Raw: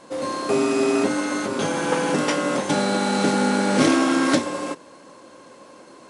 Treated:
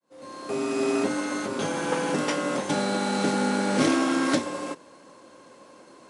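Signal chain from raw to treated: fade-in on the opening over 0.89 s; trim -4.5 dB

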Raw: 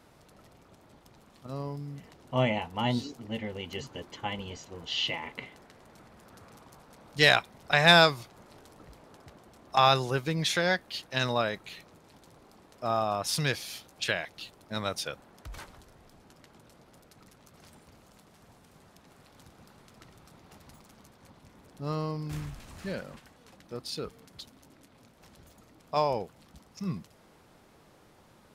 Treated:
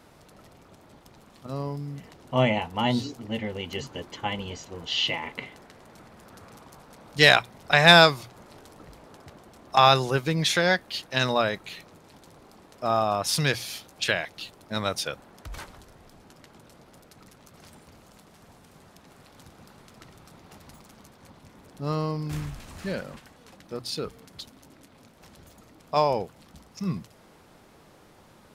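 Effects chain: hum notches 60/120 Hz; trim +4.5 dB

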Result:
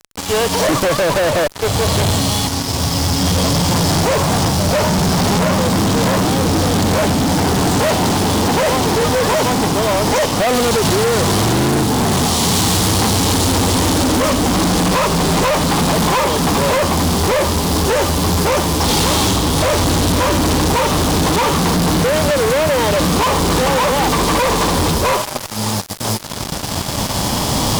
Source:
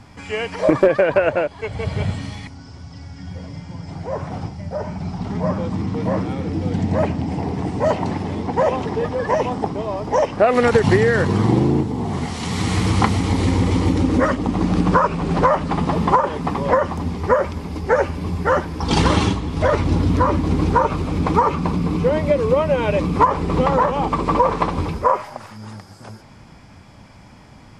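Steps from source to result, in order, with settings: formants flattened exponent 0.6; recorder AGC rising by 7.1 dB/s; high-order bell 1.9 kHz -13 dB 1.1 oct; fuzz box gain 35 dB, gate -34 dBFS

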